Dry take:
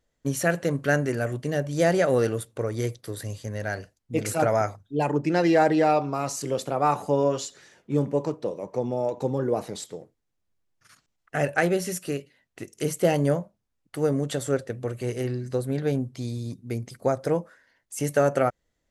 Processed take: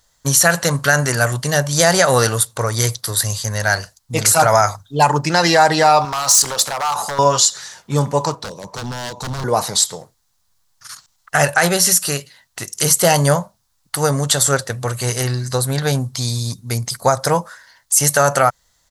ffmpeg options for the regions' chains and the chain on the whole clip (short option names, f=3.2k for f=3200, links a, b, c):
-filter_complex "[0:a]asettb=1/sr,asplit=3[a][b][c];[a]atrim=end=6.054[d];[b]atrim=start=6.05:end=7.19,asetpts=PTS-STARTPTS,afade=t=in:d=0.004:c=qsin,afade=t=out:st=1.136:d=0.004:c=qsin,lowshelf=f=180:g=-11.5,acompressor=threshold=-27dB:ratio=20:attack=3.2:release=140:knee=1:detection=peak,aeval=exprs='0.0398*(abs(mod(val(0)/0.0398+3,4)-2)-1)':c=same[e];[c]atrim=start=7.186[f];[d][e]acrossfade=d=0.004:c1=hsin:c2=qsin[g];[g][f]acrossfade=d=0.004:c1=qsin:c2=hsin,asettb=1/sr,asplit=3[h][i][j];[h]atrim=end=8.354[k];[i]atrim=start=8.35:end=9.44,asetpts=PTS-STARTPTS,afade=t=in:d=0.004:c=qsin,afade=t=out:st=1.086:d=0.004:c=qsin,aeval=exprs='0.0531*(abs(mod(val(0)/0.0531+3,4)-2)-1)':c=same,highshelf=f=6.3k:g=-7,acrossover=split=420|3000[l][m][n];[m]acompressor=threshold=-49dB:ratio=4:attack=3.2:release=140:knee=2.83:detection=peak[o];[l][o][n]amix=inputs=3:normalize=0[p];[j]atrim=start=9.436[q];[k][p]acrossfade=d=0.004:c1=hsin:c2=qsin[r];[r][q]acrossfade=d=0.004:c1=qsin:c2=hsin,firequalizer=gain_entry='entry(130,0);entry(300,-11);entry(940,9);entry(2400,1);entry(4100,13)':delay=0.05:min_phase=1,alimiter=level_in=11.5dB:limit=-1dB:release=50:level=0:latency=1,volume=-1dB"